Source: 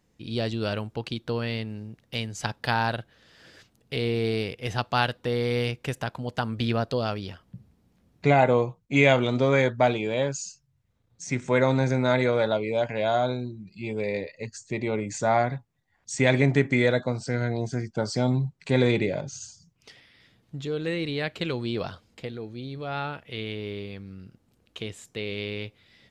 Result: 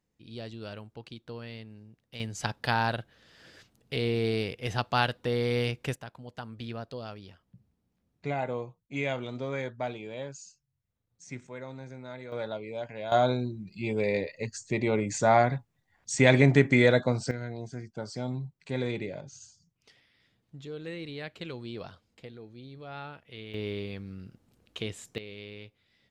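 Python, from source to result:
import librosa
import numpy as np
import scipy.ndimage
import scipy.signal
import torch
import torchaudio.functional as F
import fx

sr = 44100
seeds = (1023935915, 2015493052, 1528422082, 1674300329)

y = fx.gain(x, sr, db=fx.steps((0.0, -12.5), (2.2, -2.0), (5.96, -12.5), (11.47, -20.0), (12.32, -11.0), (13.12, 1.0), (17.31, -10.0), (23.54, 0.0), (25.18, -11.5)))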